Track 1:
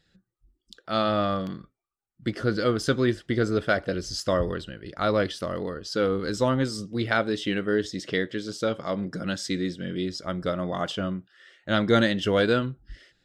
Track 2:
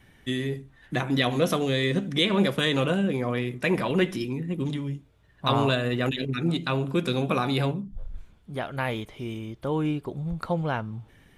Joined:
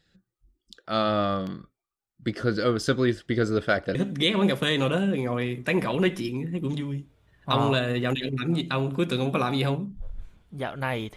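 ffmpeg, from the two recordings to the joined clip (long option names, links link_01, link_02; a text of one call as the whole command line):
ffmpeg -i cue0.wav -i cue1.wav -filter_complex "[0:a]apad=whole_dur=11.16,atrim=end=11.16,atrim=end=3.952[link_01];[1:a]atrim=start=1.908:end=9.12[link_02];[link_01][link_02]acrossfade=duration=0.004:curve1=hsin:curve2=hsin" out.wav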